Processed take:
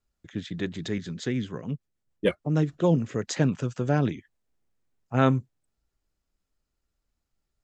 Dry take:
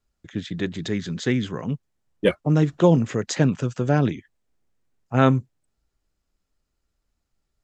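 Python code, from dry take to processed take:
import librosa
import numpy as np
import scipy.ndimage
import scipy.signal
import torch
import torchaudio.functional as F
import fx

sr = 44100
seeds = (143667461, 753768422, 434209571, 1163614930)

y = fx.rotary(x, sr, hz=6.7, at=(0.98, 3.16))
y = F.gain(torch.from_numpy(y), -4.0).numpy()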